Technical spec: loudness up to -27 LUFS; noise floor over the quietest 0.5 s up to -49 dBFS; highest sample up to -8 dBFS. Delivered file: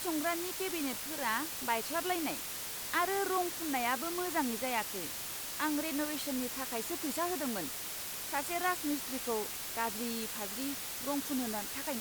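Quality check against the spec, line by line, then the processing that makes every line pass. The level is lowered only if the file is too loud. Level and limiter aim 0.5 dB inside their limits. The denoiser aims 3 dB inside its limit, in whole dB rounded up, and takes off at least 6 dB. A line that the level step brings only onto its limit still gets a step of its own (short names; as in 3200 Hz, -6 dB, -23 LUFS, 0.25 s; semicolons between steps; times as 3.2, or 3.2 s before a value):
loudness -34.5 LUFS: OK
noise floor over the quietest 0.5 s -41 dBFS: fail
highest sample -17.5 dBFS: OK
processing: denoiser 11 dB, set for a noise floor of -41 dBFS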